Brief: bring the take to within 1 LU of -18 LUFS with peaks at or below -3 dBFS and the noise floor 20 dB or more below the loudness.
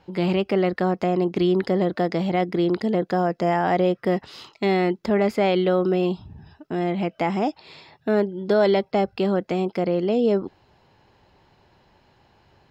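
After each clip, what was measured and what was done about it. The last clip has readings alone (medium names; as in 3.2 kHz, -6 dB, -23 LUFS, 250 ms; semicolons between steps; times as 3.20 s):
loudness -22.5 LUFS; peak level -8.5 dBFS; loudness target -18.0 LUFS
-> trim +4.5 dB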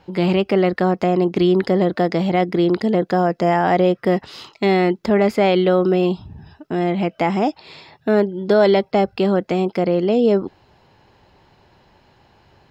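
loudness -18.0 LUFS; peak level -4.0 dBFS; noise floor -56 dBFS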